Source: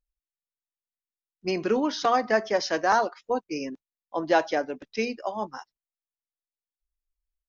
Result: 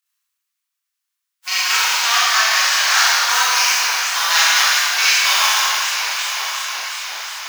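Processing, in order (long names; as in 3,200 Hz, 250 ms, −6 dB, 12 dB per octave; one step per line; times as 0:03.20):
spectral envelope flattened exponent 0.3
high-pass filter 1,100 Hz 24 dB per octave
in parallel at +1 dB: brickwall limiter −16.5 dBFS, peak gain reduction 9.5 dB
on the sum: speech leveller 0.5 s
on a send: feedback delay with all-pass diffusion 968 ms, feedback 53%, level −8.5 dB
on the sum: four-comb reverb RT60 2.2 s, combs from 29 ms, DRR −9.5 dB
feedback echo with a swinging delay time 364 ms, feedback 61%, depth 187 cents, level −11 dB
level −1 dB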